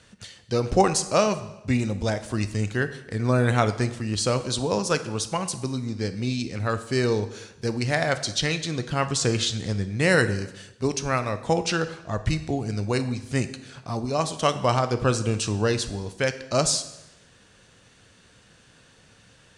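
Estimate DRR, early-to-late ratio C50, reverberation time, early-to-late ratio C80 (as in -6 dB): 10.0 dB, 13.0 dB, 0.90 s, 15.0 dB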